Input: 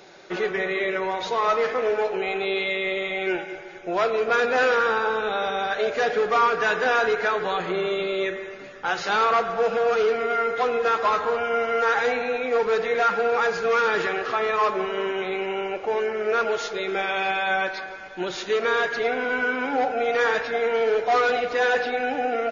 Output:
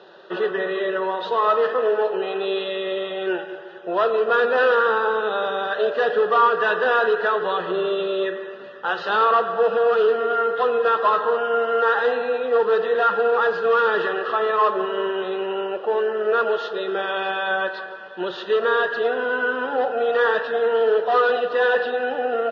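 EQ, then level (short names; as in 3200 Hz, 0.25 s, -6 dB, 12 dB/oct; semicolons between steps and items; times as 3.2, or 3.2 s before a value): Butterworth band-stop 2200 Hz, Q 3.6; speaker cabinet 270–3300 Hz, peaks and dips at 290 Hz -10 dB, 770 Hz -7 dB, 1500 Hz -3 dB, 2300 Hz -10 dB; +5.5 dB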